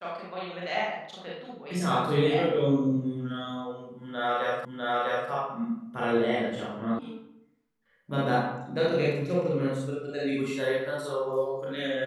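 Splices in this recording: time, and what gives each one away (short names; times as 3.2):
4.65 repeat of the last 0.65 s
6.99 sound cut off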